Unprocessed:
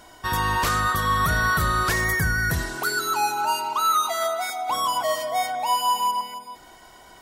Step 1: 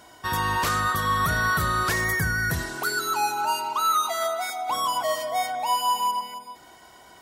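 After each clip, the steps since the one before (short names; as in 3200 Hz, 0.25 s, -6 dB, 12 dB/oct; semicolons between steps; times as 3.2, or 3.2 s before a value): HPF 67 Hz; ending taper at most 250 dB/s; gain -1.5 dB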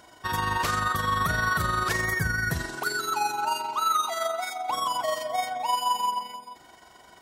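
bell 14000 Hz -4.5 dB 0.84 oct; AM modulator 23 Hz, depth 30%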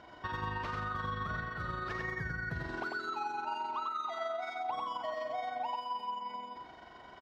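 compressor 6:1, threshold -35 dBFS, peak gain reduction 13.5 dB; air absorption 250 m; echo 97 ms -4 dB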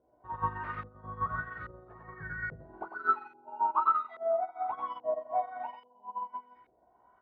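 chorus 0.6 Hz, delay 16 ms, depth 3.8 ms; LFO low-pass saw up 1.2 Hz 480–2300 Hz; upward expander 2.5:1, over -44 dBFS; gain +9 dB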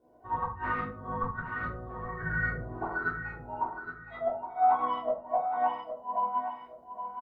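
flipped gate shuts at -24 dBFS, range -35 dB; feedback echo 0.817 s, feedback 29%, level -9 dB; shoebox room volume 220 m³, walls furnished, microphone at 3.4 m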